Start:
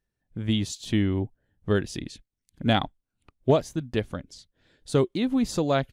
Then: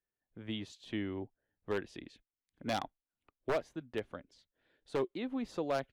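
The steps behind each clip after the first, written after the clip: three-band isolator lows -12 dB, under 290 Hz, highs -16 dB, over 3.4 kHz; wavefolder -17 dBFS; trim -8 dB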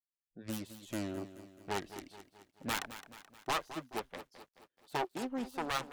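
self-modulated delay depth 0.68 ms; spectral noise reduction 22 dB; bit-crushed delay 215 ms, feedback 55%, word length 11-bit, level -13 dB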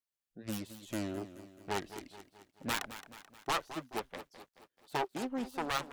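warped record 78 rpm, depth 100 cents; trim +1 dB

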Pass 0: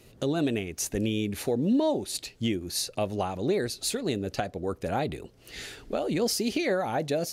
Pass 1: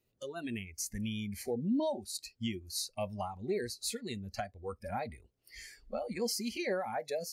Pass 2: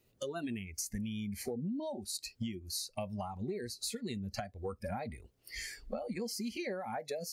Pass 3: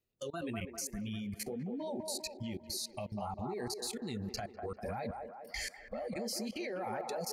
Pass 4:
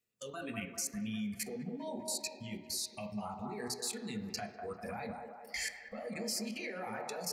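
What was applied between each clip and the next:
spectral noise reduction 19 dB; trim -6.5 dB
dynamic bell 180 Hz, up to +5 dB, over -49 dBFS, Q 0.78; compression 10:1, threshold -43 dBFS, peak gain reduction 19 dB; trim +7.5 dB
flange 1.8 Hz, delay 1.2 ms, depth 7.7 ms, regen -40%; level held to a coarse grid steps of 24 dB; feedback echo behind a band-pass 199 ms, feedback 55%, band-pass 710 Hz, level -3.5 dB; trim +9 dB
reverberation RT60 1.0 s, pre-delay 3 ms, DRR 4.5 dB; trim +1 dB

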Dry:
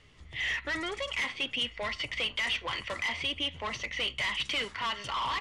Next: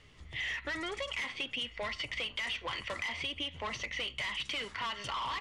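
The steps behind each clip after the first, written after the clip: compression, threshold -34 dBFS, peak gain reduction 6.5 dB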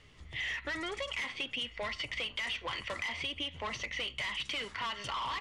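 no audible change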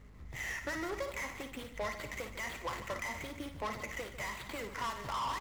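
median filter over 15 samples; hum 50 Hz, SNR 15 dB; on a send: multi-tap echo 56/149/238 ms -9.5/-13.5/-16.5 dB; on the sum: trim +1 dB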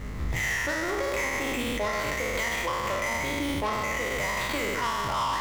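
spectral sustain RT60 1.56 s; in parallel at 0 dB: compressor with a negative ratio -42 dBFS, ratio -1; on the sum: peak limiter -29.5 dBFS, peak gain reduction 8.5 dB; trim +8.5 dB

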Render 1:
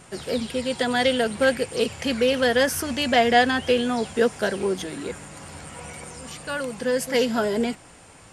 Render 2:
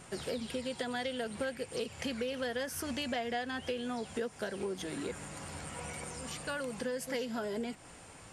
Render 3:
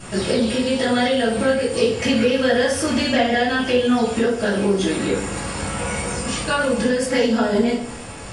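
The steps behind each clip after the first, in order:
compression 6:1, threshold -30 dBFS, peak gain reduction 16.5 dB; trim -4 dB
reverberation RT60 0.65 s, pre-delay 3 ms, DRR -10.5 dB; resampled via 22.05 kHz; trim +6.5 dB

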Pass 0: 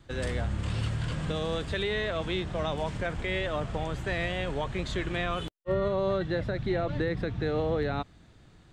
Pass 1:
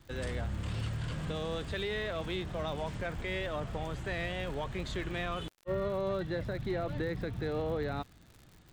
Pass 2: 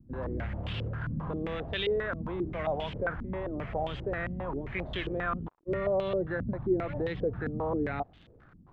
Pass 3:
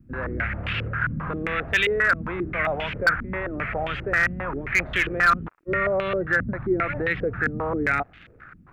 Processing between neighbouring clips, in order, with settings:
crackle 120 per s -41 dBFS; in parallel at -5.5 dB: saturation -33 dBFS, distortion -8 dB; on the sum: trim -7 dB
step-sequenced low-pass 7.5 Hz 230–3100 Hz
high-order bell 1.8 kHz +13.5 dB 1.3 oct; hard clipper -16 dBFS, distortion -20 dB; trim +4 dB

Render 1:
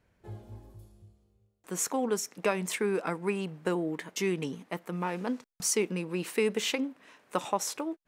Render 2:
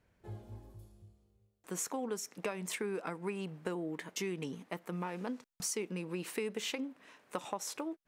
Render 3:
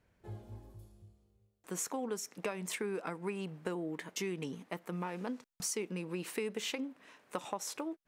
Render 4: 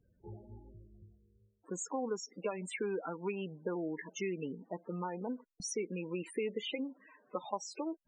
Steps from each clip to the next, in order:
compression 3:1, threshold -33 dBFS, peak gain reduction 9 dB; trim -2.5 dB
no audible change
loudest bins only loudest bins 16; dynamic bell 100 Hz, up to -7 dB, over -57 dBFS, Q 0.71; trim +2.5 dB

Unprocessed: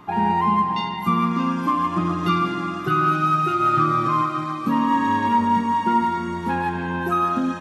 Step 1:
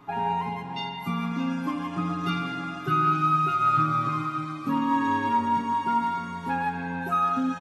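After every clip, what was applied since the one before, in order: comb 7.2 ms, depth 90%; trim -8 dB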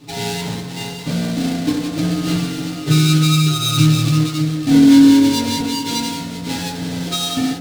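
square wave that keeps the level; ten-band graphic EQ 125 Hz +11 dB, 250 Hz +3 dB, 500 Hz +6 dB, 1 kHz -8 dB, 4 kHz +10 dB, 8 kHz +5 dB; FDN reverb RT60 0.53 s, low-frequency decay 0.95×, high-frequency decay 0.35×, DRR -2 dB; trim -5.5 dB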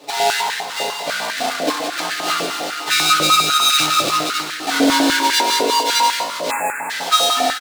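frequency-shifting echo 240 ms, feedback 59%, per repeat +55 Hz, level -15 dB; spectral selection erased 6.51–6.90 s, 2.7–6.8 kHz; step-sequenced high-pass 10 Hz 570–1700 Hz; trim +4.5 dB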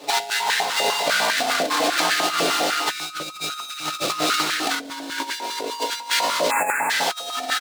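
bass shelf 90 Hz -9.5 dB; compressor with a negative ratio -22 dBFS, ratio -0.5; trim -1 dB

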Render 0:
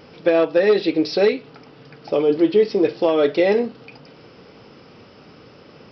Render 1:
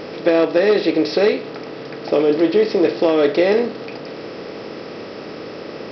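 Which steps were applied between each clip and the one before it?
spectral levelling over time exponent 0.6; trim -1 dB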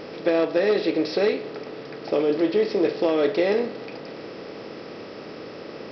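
reverberation RT60 3.6 s, pre-delay 56 ms, DRR 17 dB; trim -6 dB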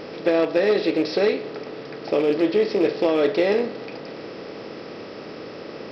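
rattle on loud lows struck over -29 dBFS, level -28 dBFS; trim +1.5 dB

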